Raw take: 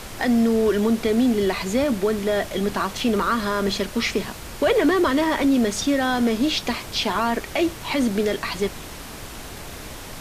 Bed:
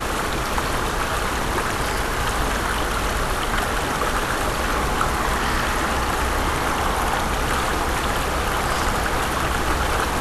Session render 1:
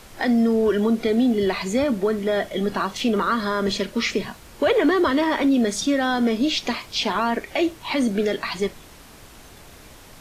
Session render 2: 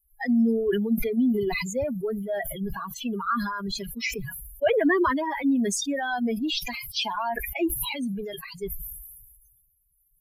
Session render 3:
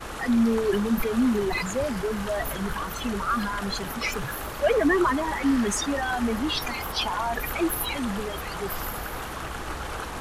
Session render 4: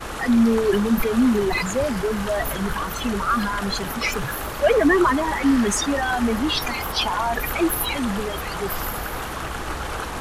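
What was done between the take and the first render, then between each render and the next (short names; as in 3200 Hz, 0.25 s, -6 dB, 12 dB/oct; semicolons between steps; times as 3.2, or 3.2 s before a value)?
noise print and reduce 9 dB
per-bin expansion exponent 3; sustainer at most 37 dB/s
add bed -12 dB
gain +4.5 dB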